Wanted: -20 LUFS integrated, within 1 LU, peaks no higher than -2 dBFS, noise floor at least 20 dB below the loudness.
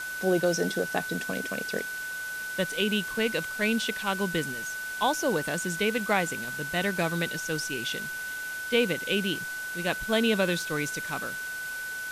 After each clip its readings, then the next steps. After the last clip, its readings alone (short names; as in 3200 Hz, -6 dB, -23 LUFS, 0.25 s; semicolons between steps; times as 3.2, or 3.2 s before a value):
steady tone 1500 Hz; tone level -33 dBFS; noise floor -35 dBFS; noise floor target -49 dBFS; loudness -28.5 LUFS; peak -10.0 dBFS; loudness target -20.0 LUFS
-> notch 1500 Hz, Q 30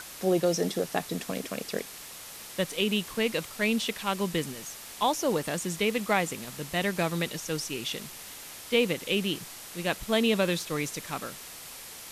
steady tone none; noise floor -44 dBFS; noise floor target -50 dBFS
-> denoiser 6 dB, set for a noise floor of -44 dBFS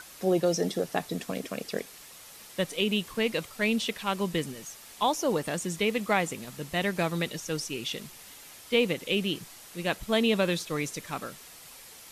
noise floor -49 dBFS; noise floor target -50 dBFS
-> denoiser 6 dB, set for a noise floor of -49 dBFS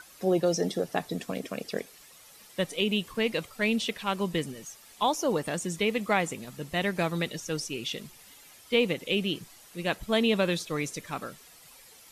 noise floor -54 dBFS; loudness -29.5 LUFS; peak -10.0 dBFS; loudness target -20.0 LUFS
-> gain +9.5 dB; limiter -2 dBFS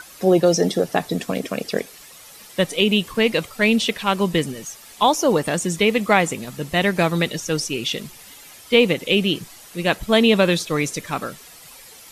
loudness -20.0 LUFS; peak -2.0 dBFS; noise floor -44 dBFS